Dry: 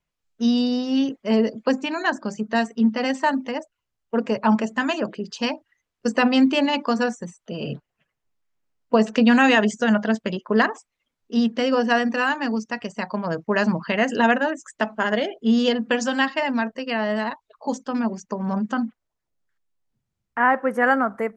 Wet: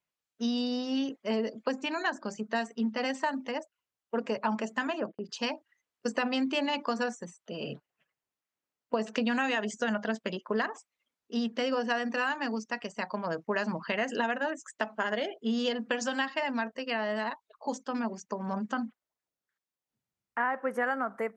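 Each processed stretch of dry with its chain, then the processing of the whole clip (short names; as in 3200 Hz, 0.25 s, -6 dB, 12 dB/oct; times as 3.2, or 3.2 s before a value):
4.87–5.29 LPF 1600 Hz 6 dB/oct + gate -37 dBFS, range -42 dB + upward compressor, threshold -30 dBFS
whole clip: HPF 320 Hz 6 dB/oct; compressor, threshold -21 dBFS; gain -4.5 dB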